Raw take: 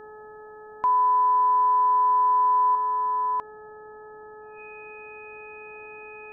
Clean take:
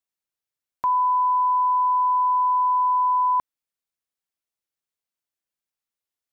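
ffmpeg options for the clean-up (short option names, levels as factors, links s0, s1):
-af "bandreject=f=427.7:t=h:w=4,bandreject=f=855.4:t=h:w=4,bandreject=f=1283.1:t=h:w=4,bandreject=f=1710.8:t=h:w=4,bandreject=f=2500:w=30,afwtdn=0.005,asetnsamples=n=441:p=0,asendcmd='2.75 volume volume 5dB',volume=1"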